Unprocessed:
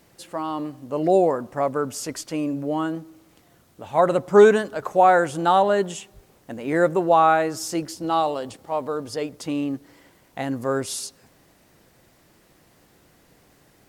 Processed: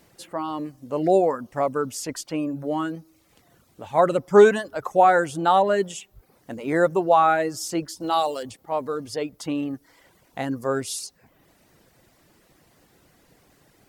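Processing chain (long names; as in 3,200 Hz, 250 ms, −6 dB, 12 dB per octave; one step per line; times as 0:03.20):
reverb reduction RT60 0.62 s
0:08.00–0:08.43: bass and treble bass −5 dB, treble +11 dB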